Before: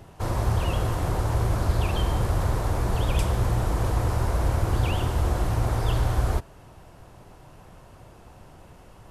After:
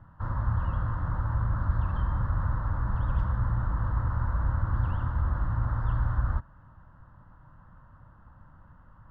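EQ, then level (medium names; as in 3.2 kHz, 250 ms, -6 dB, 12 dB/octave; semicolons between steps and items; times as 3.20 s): four-pole ladder low-pass 2.1 kHz, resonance 35%; peaking EQ 720 Hz -14.5 dB 0.51 oct; static phaser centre 980 Hz, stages 4; +5.0 dB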